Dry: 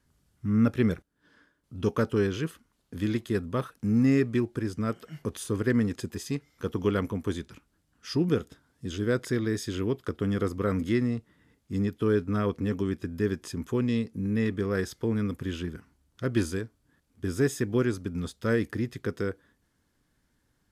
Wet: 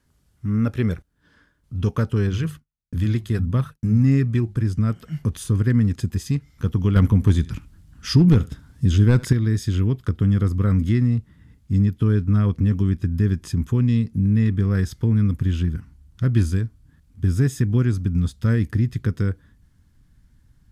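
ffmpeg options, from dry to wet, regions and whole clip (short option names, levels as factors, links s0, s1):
-filter_complex "[0:a]asettb=1/sr,asplit=3[s0][s1][s2];[s0]atrim=end=2.274[s3];[s1]atrim=start=2.27:end=4.62,asetpts=PTS-STARTPTS,afade=t=in:d=0.004:c=qsin,afade=t=out:st=2.346:d=0.004:c=qsin,bandreject=f=50:t=h:w=6,bandreject=f=100:t=h:w=6,bandreject=f=150:t=h:w=6,bandreject=f=200:t=h:w=6,agate=range=0.0224:threshold=0.00398:ratio=3:release=100:detection=peak,aphaser=in_gain=1:out_gain=1:delay=2.9:decay=0.23:speed=1.6:type=triangular[s4];[s2]atrim=start=4.616[s5];[s3][s4]acrossfade=d=0.004:c1=hsin:c2=qsin[s6];[s6][s5]acrossfade=d=0.004:c1=qsin:c2=hsin,asettb=1/sr,asplit=3[s7][s8][s9];[s7]atrim=end=6.964[s10];[s8]atrim=start=6.96:end=9.33,asetpts=PTS-STARTPTS,afade=t=in:d=0.004:c=qsin,afade=t=out:st=2.366:d=0.004:c=qsin,acontrast=88,volume=3.76,asoftclip=hard,volume=0.266,aecho=1:1:74:0.0891,atrim=end_sample=104517[s11];[s9]atrim=start=9.326[s12];[s10][s11]acrossfade=d=0.004:c1=hsin:c2=qsin[s13];[s13][s12]acrossfade=d=0.004:c1=qsin:c2=hsin,asubboost=boost=8:cutoff=150,acompressor=threshold=0.0631:ratio=1.5,volume=1.5"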